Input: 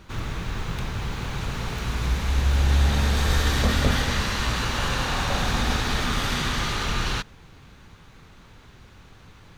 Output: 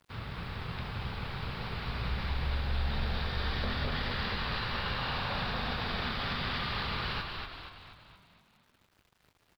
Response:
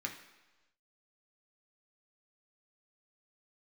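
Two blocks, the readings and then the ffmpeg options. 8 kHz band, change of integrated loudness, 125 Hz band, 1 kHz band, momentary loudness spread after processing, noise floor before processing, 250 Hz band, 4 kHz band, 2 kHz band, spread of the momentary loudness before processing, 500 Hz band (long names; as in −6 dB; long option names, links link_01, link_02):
below −25 dB, −9.5 dB, −11.0 dB, −7.5 dB, 7 LU, −49 dBFS, −10.5 dB, −8.0 dB, −7.5 dB, 9 LU, −9.0 dB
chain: -filter_complex "[0:a]highpass=61,equalizer=frequency=320:width=4:gain=-9,alimiter=limit=-18.5dB:level=0:latency=1,aresample=11025,aeval=exprs='sgn(val(0))*max(abs(val(0))-0.00473,0)':channel_layout=same,aresample=44100,acrusher=bits=9:mix=0:aa=0.000001,asplit=8[link_01][link_02][link_03][link_04][link_05][link_06][link_07][link_08];[link_02]adelay=237,afreqshift=-44,volume=-4dB[link_09];[link_03]adelay=474,afreqshift=-88,volume=-9.7dB[link_10];[link_04]adelay=711,afreqshift=-132,volume=-15.4dB[link_11];[link_05]adelay=948,afreqshift=-176,volume=-21dB[link_12];[link_06]adelay=1185,afreqshift=-220,volume=-26.7dB[link_13];[link_07]adelay=1422,afreqshift=-264,volume=-32.4dB[link_14];[link_08]adelay=1659,afreqshift=-308,volume=-38.1dB[link_15];[link_01][link_09][link_10][link_11][link_12][link_13][link_14][link_15]amix=inputs=8:normalize=0,volume=-6.5dB"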